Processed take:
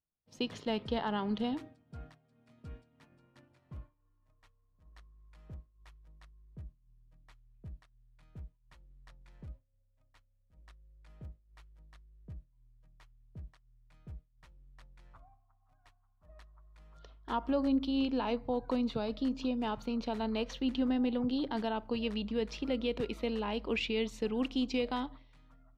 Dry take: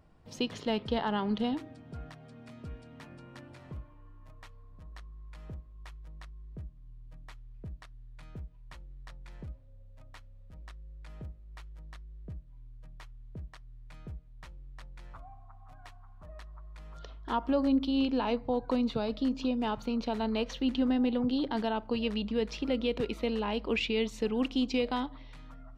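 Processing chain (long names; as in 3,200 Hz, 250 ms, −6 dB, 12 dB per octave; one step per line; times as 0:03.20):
downward expander −40 dBFS
level −3 dB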